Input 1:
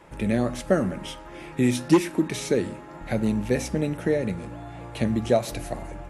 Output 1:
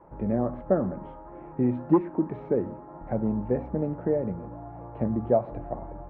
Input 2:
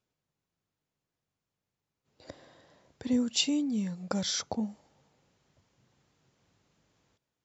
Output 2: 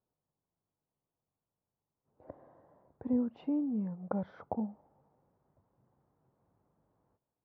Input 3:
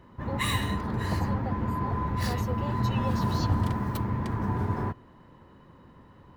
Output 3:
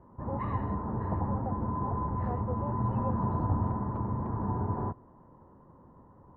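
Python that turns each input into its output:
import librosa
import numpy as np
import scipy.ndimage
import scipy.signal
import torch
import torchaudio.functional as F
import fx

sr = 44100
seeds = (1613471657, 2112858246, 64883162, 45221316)

y = fx.ladder_lowpass(x, sr, hz=1200.0, resonance_pct=30)
y = y * 10.0 ** (3.5 / 20.0)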